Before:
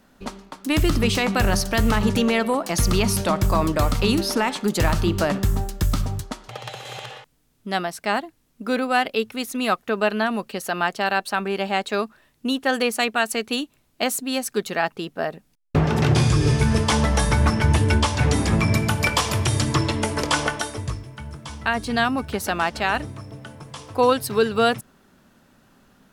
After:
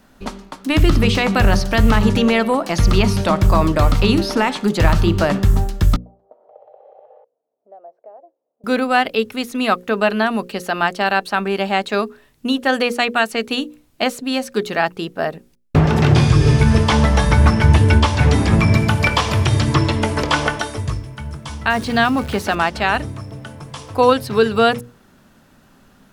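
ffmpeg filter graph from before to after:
-filter_complex "[0:a]asettb=1/sr,asplit=3[a][b][c];[a]atrim=end=5.964[d];[b]atrim=start=5.96:end=8.64,asetpts=PTS-STARTPTS,afade=t=in:d=0.004:c=qsin,afade=t=out:st=2.676:d=0.004:c=qsin,acompressor=threshold=-40dB:ratio=3:attack=3.2:release=140:knee=1:detection=peak,asuperpass=centerf=580:order=4:qfactor=2.3[e];[c]atrim=start=8.636[f];[d][e]acrossfade=d=0.004:c1=hsin:c2=qsin[g];[g][f]acrossfade=d=0.004:c1=qsin:c2=hsin,asettb=1/sr,asplit=3[h][i][j];[h]atrim=end=21.704[k];[i]atrim=start=21.7:end=22.55,asetpts=PTS-STARTPTS,afade=t=in:d=0.004:c=qsin,afade=t=out:st=0.846:d=0.004:c=qsin,aeval=exprs='val(0)+0.5*0.0224*sgn(val(0))':c=same,highpass=77[l];[j]atrim=start=22.546[m];[k][l]acrossfade=d=0.004:c1=hsin:c2=qsin[n];[n][m]acrossfade=d=0.004:c1=qsin:c2=hsin,acrossover=split=4900[o][p];[p]acompressor=threshold=-41dB:ratio=4:attack=1:release=60[q];[o][q]amix=inputs=2:normalize=0,lowshelf=f=130:g=4,bandreject=f=60:t=h:w=6,bandreject=f=120:t=h:w=6,bandreject=f=180:t=h:w=6,bandreject=f=240:t=h:w=6,bandreject=f=300:t=h:w=6,bandreject=f=360:t=h:w=6,bandreject=f=420:t=h:w=6,bandreject=f=480:t=h:w=6,bandreject=f=540:t=h:w=6,volume=4.5dB"

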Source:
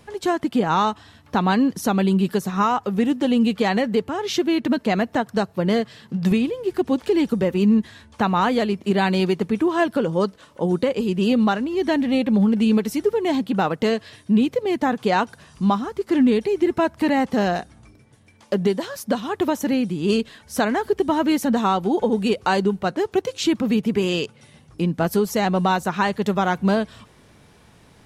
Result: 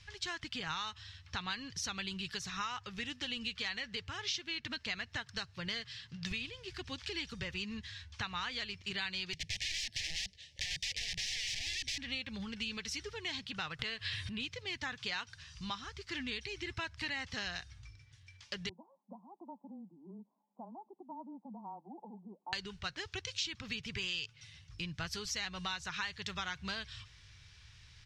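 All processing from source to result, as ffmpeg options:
-filter_complex "[0:a]asettb=1/sr,asplit=3[a][b][c];[a]atrim=end=9.334[d];[b]atrim=start=9.33:end=11.98,asetpts=PTS-STARTPTS,afade=t=in:d=0.004:c=qsin,afade=t=out:st=2.646:d=0.004:c=qsin,aeval=exprs='(mod(15*val(0)+1,2)-1)/15':c=same,asuperstop=centerf=1200:order=12:qfactor=1.3[e];[c]atrim=start=11.976[f];[d][e]acrossfade=d=0.004:c1=hsin:c2=qsin[g];[g][f]acrossfade=d=0.004:c1=qsin:c2=hsin,asettb=1/sr,asplit=3[h][i][j];[h]atrim=end=13.794[k];[i]atrim=start=13.79:end=14.4,asetpts=PTS-STARTPTS,afade=t=in:d=0.004:c=qsin,afade=t=out:st=0.606:d=0.004:c=qsin,equalizer=f=6k:w=1.7:g=-10.5,acompressor=mode=upward:threshold=-18dB:ratio=2.5:attack=3.2:release=140:knee=2.83:detection=peak[l];[j]atrim=start=14.396[m];[k][l]acrossfade=d=0.004:c1=hsin:c2=qsin[n];[n][m]acrossfade=d=0.004:c1=qsin:c2=hsin,asettb=1/sr,asplit=3[o][p][q];[o]atrim=end=18.694[r];[p]atrim=start=18.69:end=22.53,asetpts=PTS-STARTPTS,afade=t=in:d=0.004:c=qsin,afade=t=out:st=3.836:d=0.004:c=qsin,asuperpass=centerf=450:order=20:qfactor=0.6,equalizer=f=460:w=2.1:g=-12.5,afreqshift=-17[s];[q]atrim=start=22.526[t];[r][s]acrossfade=d=0.004:c1=hsin:c2=qsin[u];[u][t]acrossfade=d=0.004:c1=qsin:c2=hsin,firequalizer=gain_entry='entry(100,0);entry(200,-25);entry(660,-24);entry(1100,-13);entry(1700,-4);entry(2600,0);entry(5400,3);entry(9300,-15);entry(14000,-29)':delay=0.05:min_phase=1,acompressor=threshold=-34dB:ratio=4,volume=-1.5dB"

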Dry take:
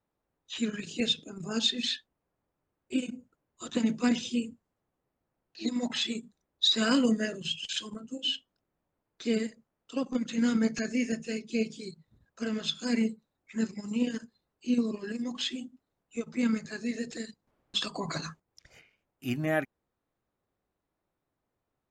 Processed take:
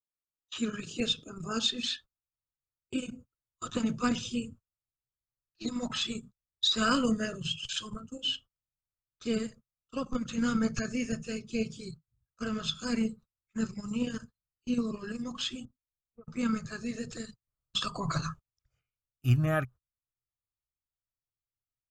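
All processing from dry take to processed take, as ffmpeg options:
-filter_complex "[0:a]asettb=1/sr,asplit=3[a][b][c];[a]atrim=end=15.654[d];[b]atrim=start=15.65:end=16.27,asetpts=PTS-STARTPTS,afade=t=in:d=0.004:c=qsin,afade=t=out:st=0.616:d=0.004:c=qsin,lowpass=f=1.1k:w=0.5412,lowpass=f=1.1k:w=1.3066,equalizer=f=160:t=o:w=2.9:g=-5.5,acompressor=threshold=-51dB:ratio=2:attack=3.2:release=140:knee=1:detection=peak[e];[c]atrim=start=16.266[f];[d][e]acrossfade=d=0.004:c1=hsin:c2=qsin[g];[g][f]acrossfade=d=0.004:c1=qsin:c2=hsin,equalizer=f=125:t=o:w=0.33:g=8,equalizer=f=800:t=o:w=0.33:g=-4,equalizer=f=1.25k:t=o:w=0.33:g=11,equalizer=f=2k:t=o:w=0.33:g=-9,equalizer=f=4k:t=o:w=0.33:g=-3,agate=range=-27dB:threshold=-46dB:ratio=16:detection=peak,asubboost=boost=9.5:cutoff=86"

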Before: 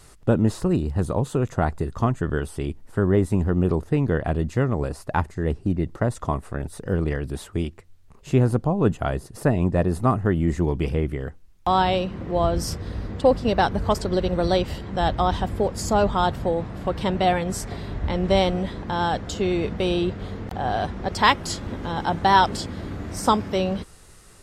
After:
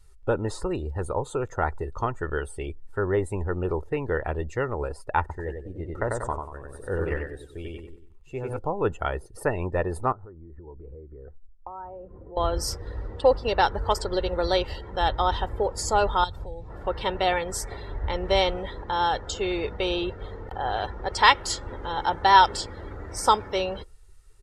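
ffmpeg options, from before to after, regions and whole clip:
-filter_complex "[0:a]asettb=1/sr,asplit=3[a][b][c];[a]atrim=end=5.204[d];[b]atrim=start=5.2:end=8.59,asetpts=PTS-STARTPTS,afade=t=in:d=0.004:c=qsin,afade=t=out:st=3.386:d=0.004:c=qsin,aecho=1:1:94|188|282|376|470|564:0.708|0.347|0.17|0.0833|0.0408|0.02,atrim=end_sample=149499,tremolo=f=1.1:d=0.6[e];[c]atrim=start=8.586[f];[d][e]acrossfade=d=0.004:c1=hsin:c2=qsin[g];[g][f]acrossfade=d=0.004:c1=qsin:c2=hsin,asettb=1/sr,asplit=3[h][i][j];[h]atrim=end=10.124[k];[i]atrim=start=10.12:end=12.37,asetpts=PTS-STARTPTS,afade=t=in:d=0.004:c=qsin,afade=t=out:st=2.246:d=0.004:c=qsin,lowpass=f=1.5k:w=0.5412,lowpass=f=1.5k:w=1.3066,acompressor=threshold=-34dB:ratio=8:attack=3.2:release=140:knee=1:detection=peak[l];[j]atrim=start=12.366[m];[k][l]acrossfade=d=0.004:c1=hsin:c2=qsin[n];[n][m]acrossfade=d=0.004:c1=qsin:c2=hsin,asettb=1/sr,asplit=3[o][p][q];[o]atrim=end=16.244[r];[p]atrim=start=16.24:end=16.7,asetpts=PTS-STARTPTS,afade=t=in:d=0.004:c=qsin,afade=t=out:st=0.456:d=0.004:c=qsin,bandreject=f=3k:w=9.8,acrossover=split=150|3000[s][t][u];[t]acompressor=threshold=-38dB:ratio=4:attack=3.2:release=140:knee=2.83:detection=peak[v];[s][v][u]amix=inputs=3:normalize=0[w];[q]atrim=start=16.696[x];[r][w]acrossfade=d=0.004:c1=hsin:c2=qsin[y];[y][x]acrossfade=d=0.004:c1=qsin:c2=hsin,afftdn=nr=17:nf=-43,equalizer=f=160:t=o:w=2.4:g=-13.5,aecho=1:1:2.2:0.4,volume=1dB"

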